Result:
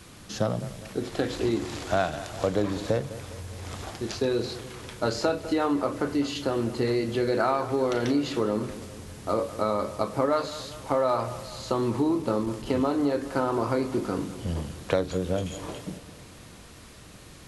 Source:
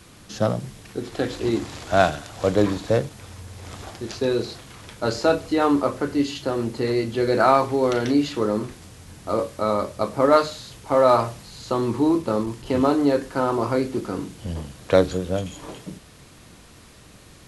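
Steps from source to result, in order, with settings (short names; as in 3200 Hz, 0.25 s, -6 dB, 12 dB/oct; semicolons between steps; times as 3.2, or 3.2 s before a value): compressor 4:1, threshold -22 dBFS, peak gain reduction 10.5 dB; analogue delay 0.204 s, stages 4096, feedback 56%, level -15 dB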